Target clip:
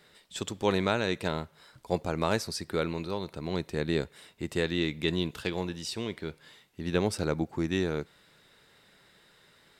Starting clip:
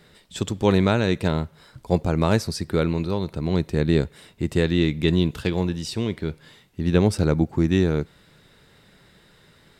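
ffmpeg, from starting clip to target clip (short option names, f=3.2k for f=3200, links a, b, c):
-af "lowshelf=f=280:g=-11.5,volume=-3.5dB"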